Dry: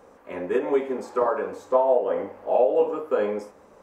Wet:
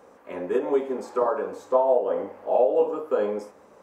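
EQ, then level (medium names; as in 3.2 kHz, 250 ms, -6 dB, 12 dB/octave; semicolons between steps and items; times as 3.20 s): high-pass 120 Hz 6 dB/octave; dynamic bell 2.1 kHz, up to -7 dB, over -46 dBFS, Q 1.6; 0.0 dB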